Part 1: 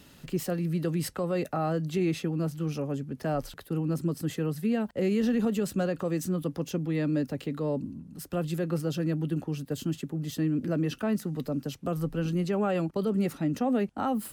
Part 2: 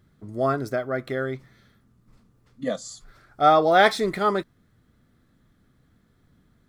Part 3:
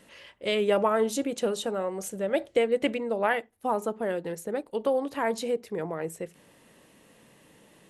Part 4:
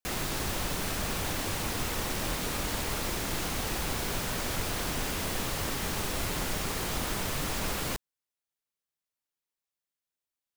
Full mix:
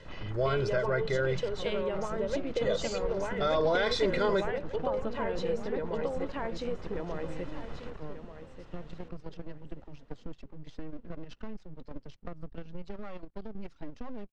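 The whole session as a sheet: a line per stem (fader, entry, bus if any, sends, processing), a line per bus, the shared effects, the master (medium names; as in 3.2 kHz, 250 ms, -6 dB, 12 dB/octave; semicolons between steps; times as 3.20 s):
-3.0 dB, 0.40 s, bus A, no send, no echo send, reverb removal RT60 1.7 s; level held to a coarse grid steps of 10 dB
-4.5 dB, 0.00 s, bus B, no send, no echo send, treble shelf 5.7 kHz +11.5 dB
+2.5 dB, 0.00 s, bus B, no send, echo send -5.5 dB, compression 6:1, threshold -30 dBFS, peak gain reduction 11.5 dB; auto duck -7 dB, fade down 0.25 s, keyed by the second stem
-8.0 dB, 0.00 s, bus A, no send, echo send -16 dB, Chebyshev low-pass 1.5 kHz, order 4
bus A: 0.0 dB, half-wave rectifier; compression, threshold -38 dBFS, peak gain reduction 8.5 dB
bus B: 0.0 dB, comb 2 ms, depth 88%; peak limiter -20 dBFS, peak gain reduction 14 dB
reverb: none
echo: feedback delay 1187 ms, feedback 26%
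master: low-pass 5.4 kHz 24 dB/octave; bass shelf 95 Hz +10.5 dB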